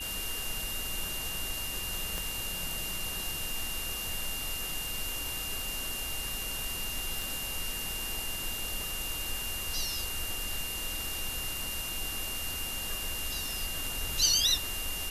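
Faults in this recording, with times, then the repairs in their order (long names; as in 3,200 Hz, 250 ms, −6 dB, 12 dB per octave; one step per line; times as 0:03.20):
whistle 2,800 Hz −38 dBFS
0:02.18: click −19 dBFS
0:07.22: click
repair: click removal
notch filter 2,800 Hz, Q 30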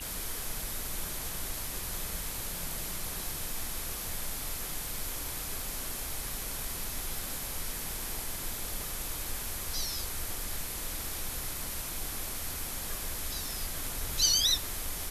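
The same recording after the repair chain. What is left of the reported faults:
0:02.18: click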